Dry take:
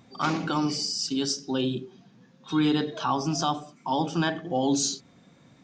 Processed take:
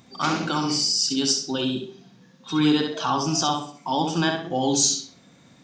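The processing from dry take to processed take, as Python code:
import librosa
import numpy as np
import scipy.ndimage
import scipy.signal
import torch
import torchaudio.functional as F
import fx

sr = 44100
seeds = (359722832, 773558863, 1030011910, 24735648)

y = fx.high_shelf(x, sr, hz=3400.0, db=8.0)
y = fx.echo_tape(y, sr, ms=65, feedback_pct=34, wet_db=-4.5, lp_hz=6000.0, drive_db=6.0, wow_cents=18)
y = y * 10.0 ** (1.0 / 20.0)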